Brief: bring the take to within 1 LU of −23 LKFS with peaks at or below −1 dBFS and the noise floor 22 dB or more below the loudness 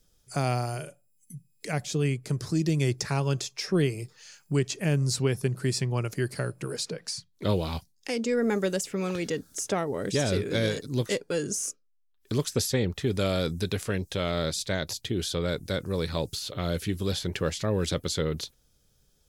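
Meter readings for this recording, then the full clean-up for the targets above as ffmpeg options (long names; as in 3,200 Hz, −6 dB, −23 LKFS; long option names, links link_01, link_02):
integrated loudness −29.0 LKFS; sample peak −13.0 dBFS; target loudness −23.0 LKFS
→ -af "volume=6dB"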